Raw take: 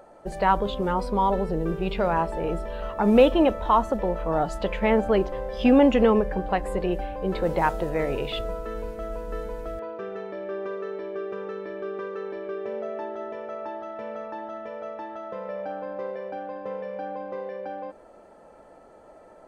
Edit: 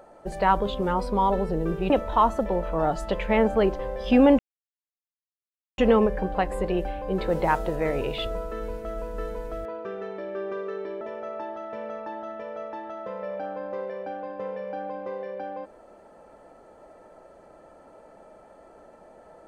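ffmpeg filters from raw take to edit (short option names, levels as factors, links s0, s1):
-filter_complex "[0:a]asplit=4[s0][s1][s2][s3];[s0]atrim=end=1.902[s4];[s1]atrim=start=3.428:end=5.92,asetpts=PTS-STARTPTS,afade=t=out:st=2.488:d=0.004:c=hsin,apad=pad_dur=1.39[s5];[s2]atrim=start=5.92:end=11.152,asetpts=PTS-STARTPTS,afade=t=in:d=0.004:c=hsin[s6];[s3]atrim=start=13.268[s7];[s5][s6]concat=n=2:v=0:a=1[s8];[s4][s8]acrossfade=d=0.004:c1=hsin:c2=hsin[s9];[s9][s7]acrossfade=d=0.004:c1=hsin:c2=hsin"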